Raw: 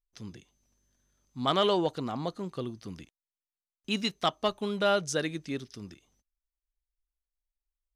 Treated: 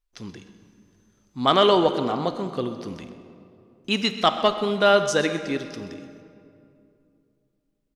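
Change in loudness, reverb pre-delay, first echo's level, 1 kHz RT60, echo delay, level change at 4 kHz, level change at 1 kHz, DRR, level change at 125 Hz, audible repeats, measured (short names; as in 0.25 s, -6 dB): +8.5 dB, 22 ms, -15.5 dB, 2.4 s, 0.129 s, +7.5 dB, +9.0 dB, 8.5 dB, +4.5 dB, 1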